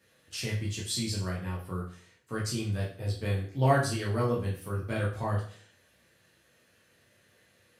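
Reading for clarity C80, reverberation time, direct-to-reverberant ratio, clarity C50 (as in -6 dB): 11.0 dB, 0.45 s, -5.5 dB, 6.5 dB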